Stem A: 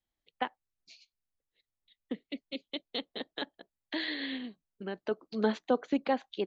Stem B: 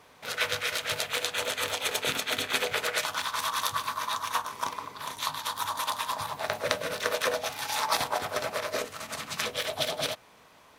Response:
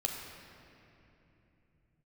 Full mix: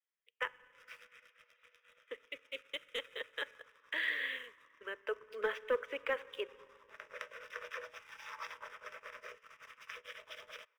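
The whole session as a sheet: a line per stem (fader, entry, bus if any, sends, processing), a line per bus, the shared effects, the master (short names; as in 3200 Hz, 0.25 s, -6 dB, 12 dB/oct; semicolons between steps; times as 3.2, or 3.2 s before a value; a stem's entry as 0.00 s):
0.0 dB, 0.00 s, send -16.5 dB, dry
-16.0 dB, 0.50 s, send -23.5 dB, auto duck -19 dB, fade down 1.55 s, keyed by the first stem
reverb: on, RT60 3.0 s, pre-delay 10 ms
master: Chebyshev band-pass 460–5500 Hz, order 4; sample leveller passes 1; fixed phaser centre 1800 Hz, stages 4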